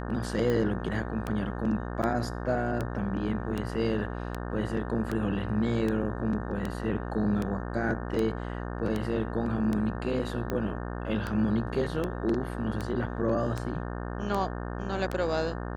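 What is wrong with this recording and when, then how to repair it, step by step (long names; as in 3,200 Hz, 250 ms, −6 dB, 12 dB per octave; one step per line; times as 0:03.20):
mains buzz 60 Hz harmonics 30 −35 dBFS
scratch tick 78 rpm −18 dBFS
0:02.02–0:02.03: drop-out 8.1 ms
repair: click removal
hum removal 60 Hz, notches 30
repair the gap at 0:02.02, 8.1 ms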